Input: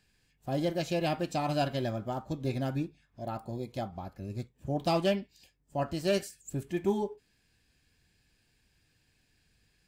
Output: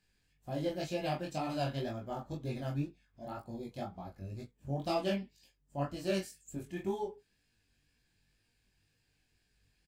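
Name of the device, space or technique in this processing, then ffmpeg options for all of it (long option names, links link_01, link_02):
double-tracked vocal: -filter_complex "[0:a]asplit=2[link_01][link_02];[link_02]adelay=21,volume=-3dB[link_03];[link_01][link_03]amix=inputs=2:normalize=0,flanger=delay=16.5:depth=5.8:speed=2,volume=-4dB"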